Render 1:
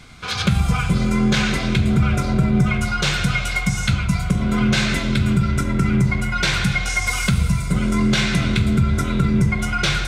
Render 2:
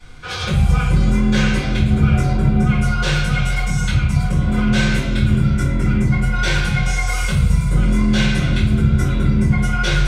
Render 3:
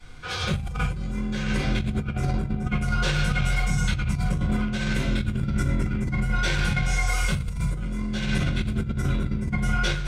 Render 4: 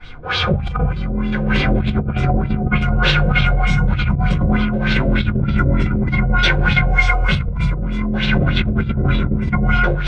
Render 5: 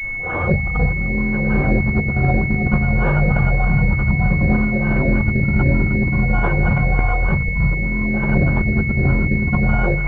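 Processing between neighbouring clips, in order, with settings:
small resonant body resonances 500/940 Hz, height 7 dB; reverberation RT60 0.40 s, pre-delay 3 ms, DRR -13 dB; trim -14 dB
compressor with a negative ratio -17 dBFS, ratio -0.5; trim -6.5 dB
LFO low-pass sine 3.3 Hz 520–3800 Hz; trim +8 dB
pre-echo 60 ms -15 dB; class-D stage that switches slowly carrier 2.2 kHz

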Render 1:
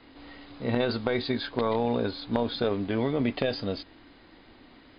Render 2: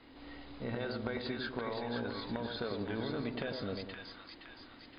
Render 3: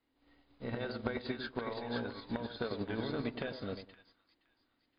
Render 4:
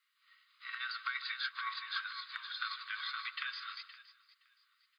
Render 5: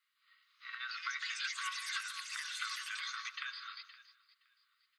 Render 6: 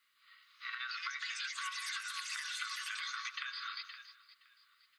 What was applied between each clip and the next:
dynamic bell 1.5 kHz, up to +7 dB, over -51 dBFS, Q 2.3; compression 4:1, threshold -32 dBFS, peak gain reduction 10 dB; on a send: two-band feedback delay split 940 Hz, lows 100 ms, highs 518 ms, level -4 dB; on the sum: trim -4.5 dB
upward expansion 2.5:1, over -52 dBFS; trim +3.5 dB
Chebyshev high-pass 1.1 kHz, order 8; band-stop 1.7 kHz, Q 25; feedback delay 153 ms, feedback 31%, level -15 dB; trim +7.5 dB
ever faster or slower copies 425 ms, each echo +5 st, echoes 3; trim -2.5 dB
compression, threshold -45 dBFS, peak gain reduction 11 dB; on a send at -12 dB: reverberation RT60 0.15 s, pre-delay 3 ms; on the sum: trim +7 dB

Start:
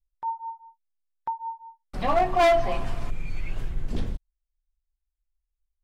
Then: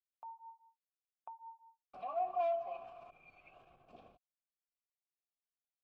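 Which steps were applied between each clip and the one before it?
peak limiter -25.5 dBFS, peak gain reduction 10 dB; vowel filter a; trim -2 dB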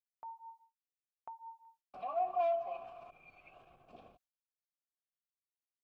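gate with hold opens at -58 dBFS; trim +2 dB

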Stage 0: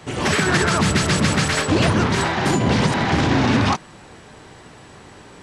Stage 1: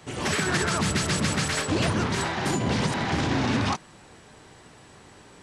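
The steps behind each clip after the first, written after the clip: treble shelf 5.6 kHz +5.5 dB; trim -7.5 dB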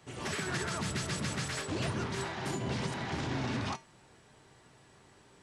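feedback comb 130 Hz, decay 0.27 s, harmonics odd, mix 60%; trim -3.5 dB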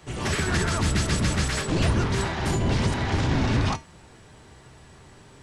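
octave divider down 1 oct, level +3 dB; trim +8.5 dB

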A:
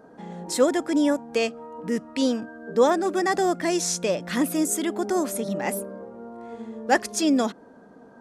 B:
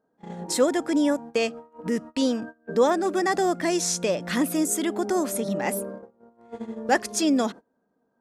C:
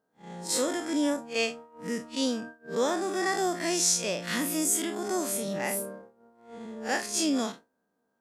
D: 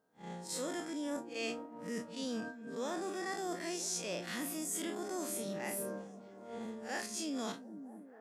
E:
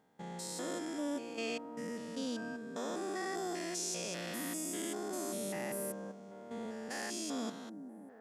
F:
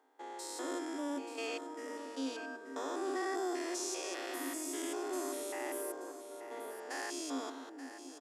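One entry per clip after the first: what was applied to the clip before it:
gate -36 dBFS, range -27 dB; in parallel at +2 dB: compression, threshold -32 dBFS, peak gain reduction 17 dB; on the sum: trim -3 dB
spectral blur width 87 ms; tilt shelf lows -5 dB, about 1.3 kHz
reverse; compression 6:1, threshold -37 dBFS, peak gain reduction 15 dB; reverse; repeats whose band climbs or falls 242 ms, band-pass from 160 Hz, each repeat 0.7 oct, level -7 dB
spectrogram pixelated in time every 200 ms; trim +2 dB
rippled Chebyshev high-pass 260 Hz, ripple 6 dB; delay 881 ms -11.5 dB; trim +4 dB

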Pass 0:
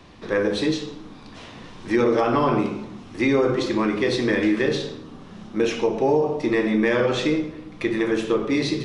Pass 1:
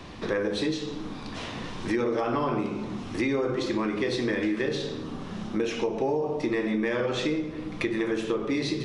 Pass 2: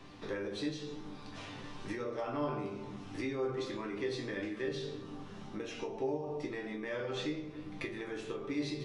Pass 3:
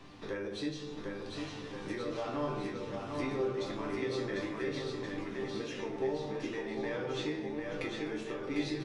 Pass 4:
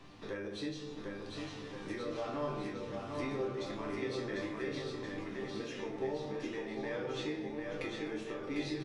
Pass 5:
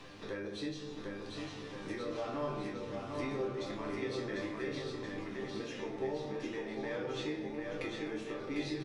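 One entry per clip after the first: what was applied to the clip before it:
compression 3:1, threshold -33 dBFS, peak gain reduction 13.5 dB; trim +5 dB
chord resonator G2 sus4, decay 0.23 s; trim +1 dB
bouncing-ball echo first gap 750 ms, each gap 0.9×, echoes 5
doubling 29 ms -11 dB; trim -2.5 dB
reverse echo 269 ms -19 dB; tape noise reduction on one side only encoder only

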